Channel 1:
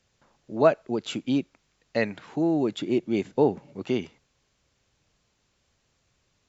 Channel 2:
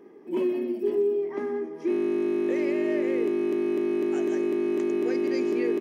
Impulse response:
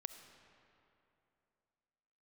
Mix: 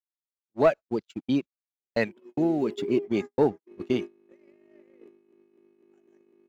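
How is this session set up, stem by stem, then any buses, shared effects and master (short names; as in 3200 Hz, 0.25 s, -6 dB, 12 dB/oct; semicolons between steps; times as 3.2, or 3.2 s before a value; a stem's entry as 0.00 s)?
-3.5 dB, 0.00 s, no send, reverb removal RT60 0.91 s; sample leveller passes 1
-9.5 dB, 1.80 s, send -9.5 dB, dry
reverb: on, RT60 2.8 s, pre-delay 25 ms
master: gate -29 dBFS, range -56 dB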